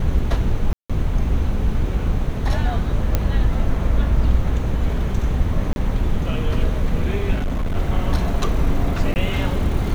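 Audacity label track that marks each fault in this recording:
0.730000	0.900000	gap 0.166 s
3.150000	3.150000	pop -5 dBFS
5.730000	5.760000	gap 31 ms
7.340000	7.770000	clipped -18 dBFS
9.140000	9.160000	gap 19 ms

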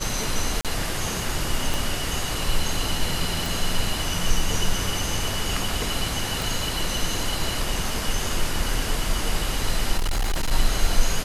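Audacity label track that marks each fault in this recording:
0.610000	0.650000	gap 37 ms
1.740000	1.740000	pop
3.460000	3.460000	pop
6.420000	6.420000	pop
9.970000	10.520000	clipped -19.5 dBFS

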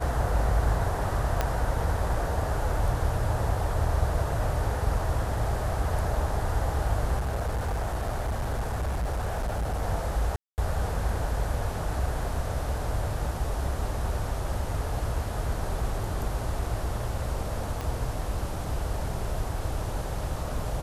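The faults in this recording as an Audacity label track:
1.410000	1.410000	pop -11 dBFS
7.180000	9.830000	clipped -25 dBFS
10.360000	10.580000	gap 0.219 s
17.810000	17.810000	pop

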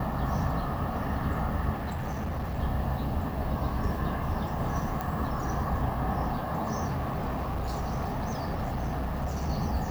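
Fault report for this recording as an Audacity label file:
1.720000	2.600000	clipped -29 dBFS
5.010000	5.010000	pop
6.870000	9.490000	clipped -27 dBFS

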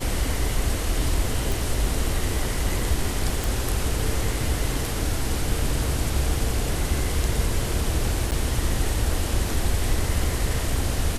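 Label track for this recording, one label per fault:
1.520000	1.520000	pop
3.440000	3.440000	pop
8.310000	8.320000	gap 8.9 ms

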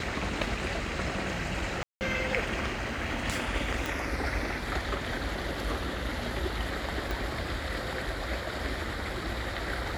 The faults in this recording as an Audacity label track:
1.830000	2.010000	gap 0.179 s
3.860000	3.860000	pop
7.110000	7.110000	pop

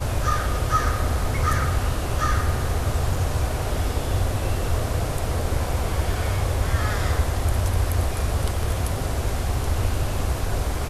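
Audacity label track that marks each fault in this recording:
3.160000	3.160000	gap 2.8 ms

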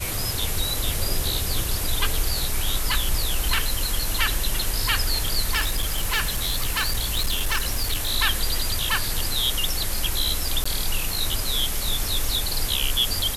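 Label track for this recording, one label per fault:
5.520000	8.120000	clipped -18 dBFS
10.640000	10.650000	gap 15 ms

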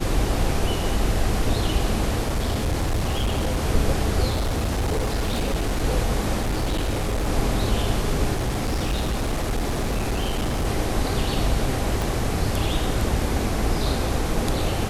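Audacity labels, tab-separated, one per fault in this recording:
2.260000	3.650000	clipped -19 dBFS
4.290000	5.850000	clipped -19.5 dBFS
6.400000	7.290000	clipped -20 dBFS
8.330000	10.660000	clipped -20 dBFS
12.020000	12.020000	pop

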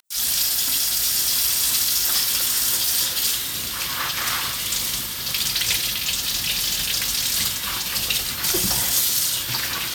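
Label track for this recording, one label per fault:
5.870000	7.000000	clipped -17.5 dBFS

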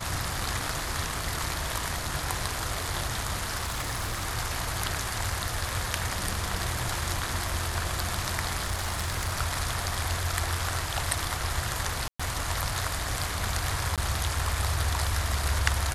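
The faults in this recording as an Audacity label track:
3.630000	4.270000	clipped -26.5 dBFS
8.630000	9.340000	clipped -24.5 dBFS
12.080000	12.200000	gap 0.115 s
13.960000	13.980000	gap 17 ms

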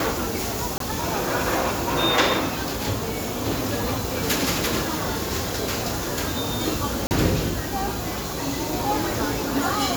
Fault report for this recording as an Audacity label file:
0.780000	0.800000	gap 23 ms
7.070000	7.110000	gap 39 ms

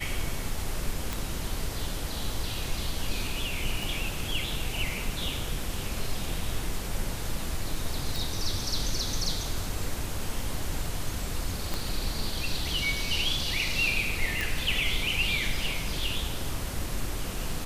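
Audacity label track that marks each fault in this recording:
1.130000	1.130000	pop
3.830000	3.830000	pop
8.160000	8.160000	pop
11.740000	11.740000	pop -15 dBFS
14.410000	14.410000	pop

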